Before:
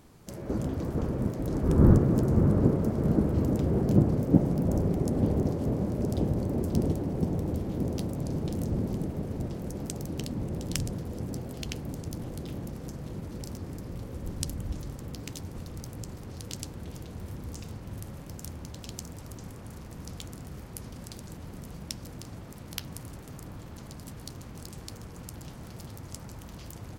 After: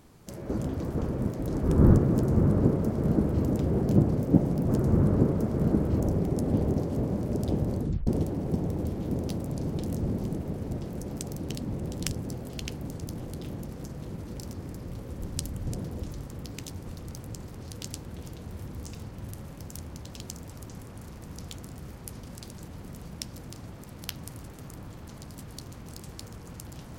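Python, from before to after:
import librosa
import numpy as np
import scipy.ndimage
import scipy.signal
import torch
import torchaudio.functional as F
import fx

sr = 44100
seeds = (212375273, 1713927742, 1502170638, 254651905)

y = fx.edit(x, sr, fx.duplicate(start_s=2.13, length_s=1.31, to_s=4.69),
    fx.tape_stop(start_s=6.47, length_s=0.29),
    fx.move(start_s=10.81, length_s=0.35, to_s=14.71), tone=tone)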